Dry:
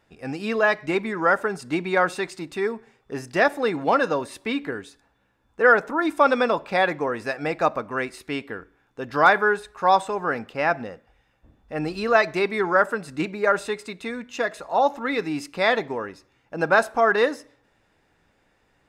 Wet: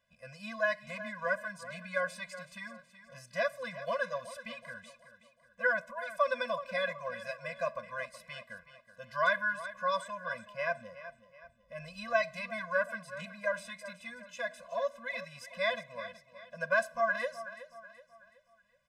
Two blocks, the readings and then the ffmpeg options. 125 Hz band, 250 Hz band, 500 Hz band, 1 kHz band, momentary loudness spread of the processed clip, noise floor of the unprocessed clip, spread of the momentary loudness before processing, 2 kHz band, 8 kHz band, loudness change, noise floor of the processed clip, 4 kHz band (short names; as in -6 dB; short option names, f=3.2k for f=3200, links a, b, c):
-15.0 dB, -21.5 dB, -12.5 dB, -14.5 dB, 18 LU, -66 dBFS, 13 LU, -9.5 dB, -10.0 dB, -12.0 dB, -67 dBFS, -10.5 dB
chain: -af "lowshelf=f=380:g=-10,aecho=1:1:374|748|1122|1496:0.2|0.0818|0.0335|0.0138,afftfilt=real='re*eq(mod(floor(b*sr/1024/240),2),0)':imag='im*eq(mod(floor(b*sr/1024/240),2),0)':win_size=1024:overlap=0.75,volume=-7dB"